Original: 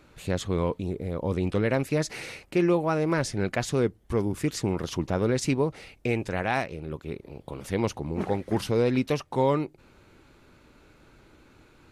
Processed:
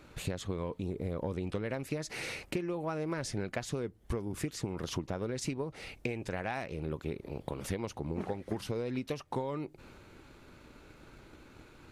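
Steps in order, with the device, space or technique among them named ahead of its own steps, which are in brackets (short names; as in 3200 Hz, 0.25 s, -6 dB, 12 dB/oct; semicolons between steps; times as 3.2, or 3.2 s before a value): drum-bus smash (transient shaper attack +7 dB, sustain +3 dB; compressor 12:1, threshold -31 dBFS, peak gain reduction 18 dB; soft clip -20.5 dBFS, distortion -24 dB)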